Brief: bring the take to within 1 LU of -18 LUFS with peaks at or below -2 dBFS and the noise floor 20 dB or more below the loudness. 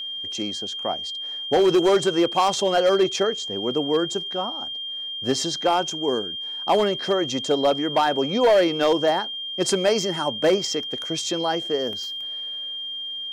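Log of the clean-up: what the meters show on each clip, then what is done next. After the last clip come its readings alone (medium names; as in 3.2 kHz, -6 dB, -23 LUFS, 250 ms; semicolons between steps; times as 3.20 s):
clipped samples 0.9%; clipping level -12.5 dBFS; steady tone 3.2 kHz; tone level -29 dBFS; loudness -22.5 LUFS; peak level -12.5 dBFS; loudness target -18.0 LUFS
-> clip repair -12.5 dBFS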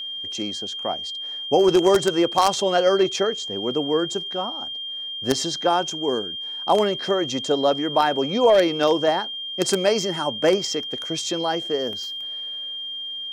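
clipped samples 0.0%; steady tone 3.2 kHz; tone level -29 dBFS
-> band-stop 3.2 kHz, Q 30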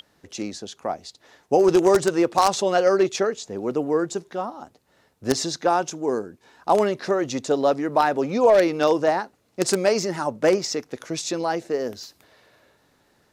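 steady tone not found; loudness -22.5 LUFS; peak level -3.0 dBFS; loudness target -18.0 LUFS
-> trim +4.5 dB; peak limiter -2 dBFS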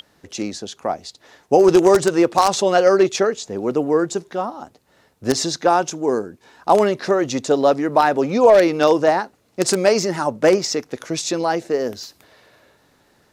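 loudness -18.0 LUFS; peak level -2.0 dBFS; noise floor -59 dBFS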